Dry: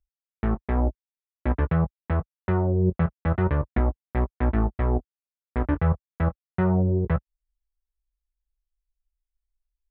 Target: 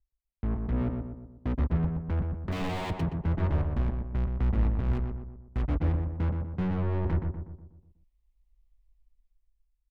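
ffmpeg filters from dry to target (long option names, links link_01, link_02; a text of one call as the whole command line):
ffmpeg -i in.wav -filter_complex "[0:a]asettb=1/sr,asplit=3[link_01][link_02][link_03];[link_01]atrim=end=0.724[link_04];[link_02]atrim=start=0.72:end=1.55,asetpts=PTS-STARTPTS,afade=type=in:duration=0.004:curve=qsin,afade=type=out:start_time=0.826:duration=0.004:curve=qsin,equalizer=frequency=125:width_type=o:width=1:gain=5,equalizer=frequency=250:width_type=o:width=1:gain=11,equalizer=frequency=500:width_type=o:width=1:gain=-7,equalizer=frequency=1000:width_type=o:width=1:gain=-10,equalizer=frequency=2000:width_type=o:width=1:gain=3[link_05];[link_03]atrim=start=1.546[link_06];[link_04][link_05]acrossfade=duration=0.004:curve1=hsin:curve2=qsin[link_07];[link_07][link_06]acrossfade=duration=0.004:curve1=qsin:curve2=hsin,asplit=3[link_08][link_09][link_10];[link_08]afade=type=out:start_time=2.51:duration=0.02[link_11];[link_09]aeval=exprs='(mod(12.6*val(0)+1,2)-1)/12.6':channel_layout=same,afade=type=in:start_time=2.51:duration=0.02,afade=type=out:start_time=3:duration=0.02[link_12];[link_10]afade=type=in:start_time=3:duration=0.02[link_13];[link_11][link_12][link_13]amix=inputs=3:normalize=0,dynaudnorm=framelen=140:gausssize=11:maxgain=12dB,asettb=1/sr,asplit=3[link_14][link_15][link_16];[link_14]atrim=end=4.934[link_17];[link_15]atrim=start=4.93:end=5.62,asetpts=PTS-STARTPTS,afade=type=in:duration=0.004:curve=qsin,afade=type=out:start_time=0.686:duration=0.004:curve=qsin,acrusher=bits=3:mix=0:aa=0.5[link_18];[link_16]atrim=start=5.616[link_19];[link_17][link_18]acrossfade=duration=0.004:curve1=hsin:curve2=qsin[link_20];[link_20][link_19]acrossfade=duration=0.004:curve1=qsin:curve2=hsin,asuperstop=centerf=1500:order=8:qfactor=2.6,asoftclip=type=tanh:threshold=-27dB,bass=frequency=250:gain=8,treble=frequency=4000:gain=-13,asplit=2[link_21][link_22];[link_22]adelay=122,lowpass=frequency=1400:poles=1,volume=-4dB,asplit=2[link_23][link_24];[link_24]adelay=122,lowpass=frequency=1400:poles=1,volume=0.51,asplit=2[link_25][link_26];[link_26]adelay=122,lowpass=frequency=1400:poles=1,volume=0.51,asplit=2[link_27][link_28];[link_28]adelay=122,lowpass=frequency=1400:poles=1,volume=0.51,asplit=2[link_29][link_30];[link_30]adelay=122,lowpass=frequency=1400:poles=1,volume=0.51,asplit=2[link_31][link_32];[link_32]adelay=122,lowpass=frequency=1400:poles=1,volume=0.51,asplit=2[link_33][link_34];[link_34]adelay=122,lowpass=frequency=1400:poles=1,volume=0.51[link_35];[link_21][link_23][link_25][link_27][link_29][link_31][link_33][link_35]amix=inputs=8:normalize=0,volume=-5.5dB" out.wav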